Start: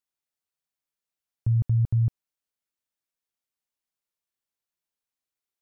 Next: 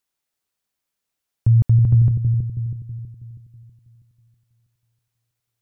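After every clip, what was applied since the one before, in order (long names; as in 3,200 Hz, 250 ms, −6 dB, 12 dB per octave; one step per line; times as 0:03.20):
bucket-brigade delay 322 ms, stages 1,024, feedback 47%, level −5 dB
level +8.5 dB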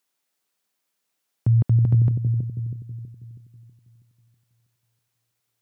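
high-pass filter 170 Hz 12 dB per octave
level +4 dB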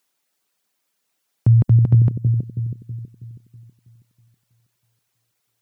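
reverb reduction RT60 0.55 s
level +5.5 dB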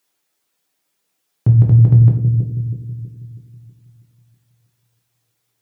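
rectangular room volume 44 cubic metres, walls mixed, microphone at 0.56 metres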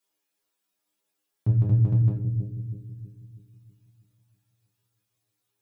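stiff-string resonator 100 Hz, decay 0.26 s, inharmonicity 0.002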